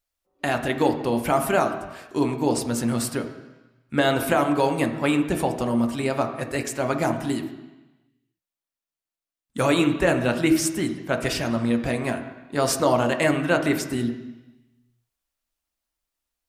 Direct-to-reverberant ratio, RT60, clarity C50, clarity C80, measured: 4.5 dB, 1.1 s, 8.5 dB, 11.0 dB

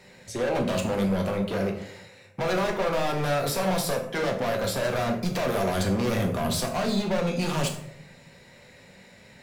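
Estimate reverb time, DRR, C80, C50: 0.75 s, 1.5 dB, 11.0 dB, 7.5 dB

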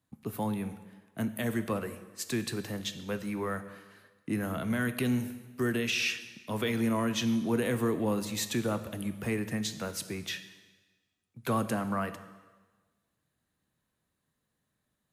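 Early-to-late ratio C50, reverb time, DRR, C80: 12.5 dB, 1.3 s, 10.0 dB, 14.0 dB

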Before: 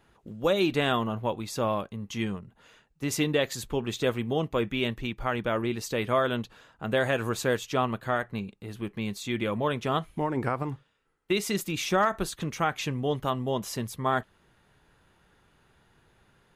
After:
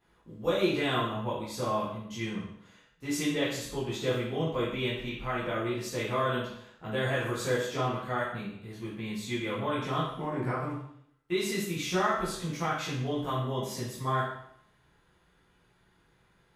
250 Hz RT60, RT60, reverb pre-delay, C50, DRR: 0.75 s, 0.70 s, 10 ms, 2.0 dB, -10.0 dB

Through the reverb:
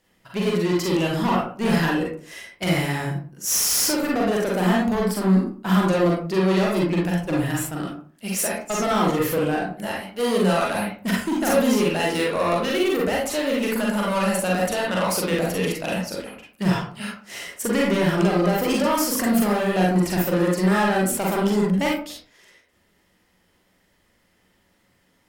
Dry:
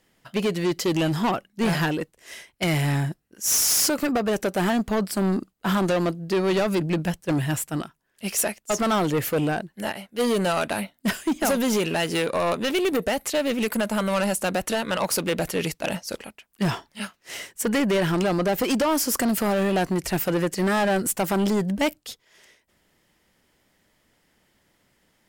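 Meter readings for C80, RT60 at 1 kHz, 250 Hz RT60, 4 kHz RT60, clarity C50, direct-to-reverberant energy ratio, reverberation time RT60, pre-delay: 8.0 dB, 0.40 s, 0.55 s, 0.25 s, 1.5 dB, -3.5 dB, 0.45 s, 38 ms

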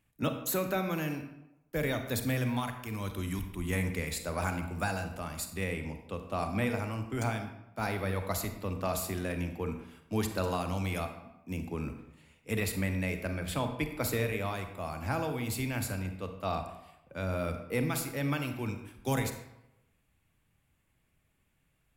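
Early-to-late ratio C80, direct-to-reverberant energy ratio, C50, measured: 10.5 dB, 6.5 dB, 8.0 dB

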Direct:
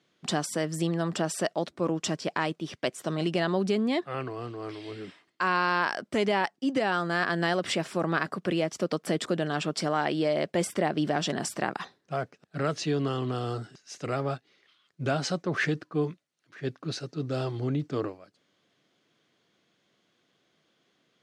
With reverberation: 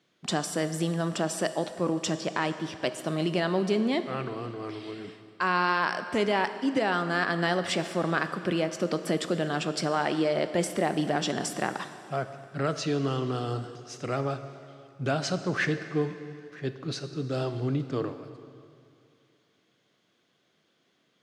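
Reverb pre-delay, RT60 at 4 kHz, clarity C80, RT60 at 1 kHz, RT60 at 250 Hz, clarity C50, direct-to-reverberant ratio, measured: 7 ms, 2.3 s, 11.5 dB, 2.5 s, 2.5 s, 11.0 dB, 10.0 dB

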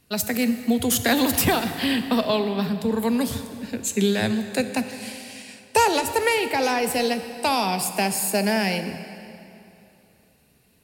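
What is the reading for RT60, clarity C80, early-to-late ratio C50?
2.9 s, 10.0 dB, 9.5 dB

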